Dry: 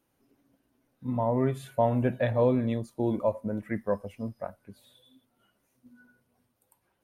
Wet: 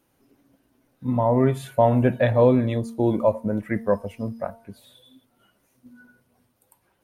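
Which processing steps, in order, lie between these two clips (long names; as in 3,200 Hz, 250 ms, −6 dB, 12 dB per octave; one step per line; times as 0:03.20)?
hum removal 229.1 Hz, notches 5
level +7 dB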